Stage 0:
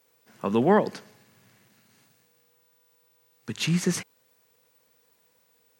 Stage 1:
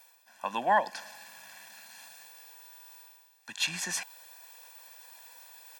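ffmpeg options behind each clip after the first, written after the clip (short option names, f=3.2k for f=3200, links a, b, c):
-af "highpass=650,aecho=1:1:1.2:0.89,areverse,acompressor=mode=upward:threshold=-35dB:ratio=2.5,areverse,volume=-2.5dB"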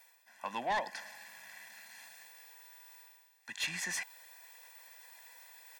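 -af "equalizer=f=2k:t=o:w=0.22:g=14,asoftclip=type=tanh:threshold=-23dB,volume=-4.5dB"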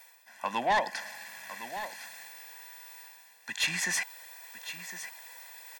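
-af "aecho=1:1:1059:0.251,volume=7dB"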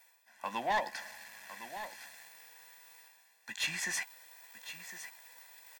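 -filter_complex "[0:a]asplit=2[a][b];[b]acrusher=bits=6:mix=0:aa=0.000001,volume=-7dB[c];[a][c]amix=inputs=2:normalize=0,asplit=2[d][e];[e]adelay=14,volume=-10.5dB[f];[d][f]amix=inputs=2:normalize=0,volume=-9dB"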